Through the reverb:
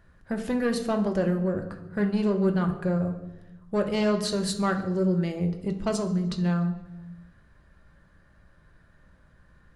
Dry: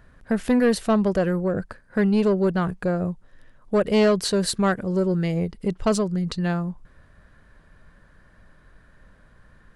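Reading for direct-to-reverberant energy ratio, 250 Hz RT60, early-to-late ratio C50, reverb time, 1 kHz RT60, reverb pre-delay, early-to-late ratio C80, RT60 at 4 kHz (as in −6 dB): 4.0 dB, 1.5 s, 10.0 dB, 1.1 s, 0.90 s, 3 ms, 12.0 dB, 0.85 s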